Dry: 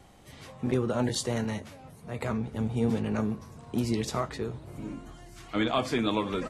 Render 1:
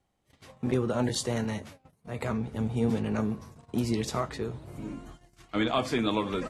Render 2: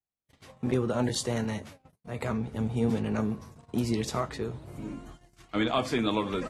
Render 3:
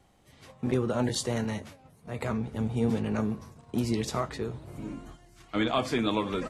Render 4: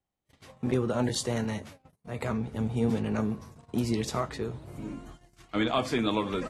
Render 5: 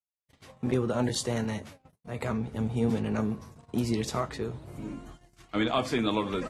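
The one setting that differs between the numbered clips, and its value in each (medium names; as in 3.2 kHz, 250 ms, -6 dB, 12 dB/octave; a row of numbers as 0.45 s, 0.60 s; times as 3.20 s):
gate, range: -21 dB, -46 dB, -8 dB, -33 dB, -59 dB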